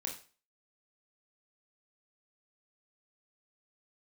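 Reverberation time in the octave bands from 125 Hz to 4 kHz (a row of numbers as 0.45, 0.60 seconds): 0.35, 0.35, 0.40, 0.35, 0.35, 0.35 seconds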